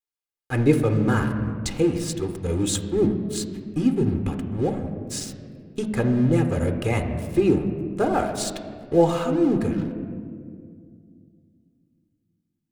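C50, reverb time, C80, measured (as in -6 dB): 8.0 dB, 2.2 s, 9.0 dB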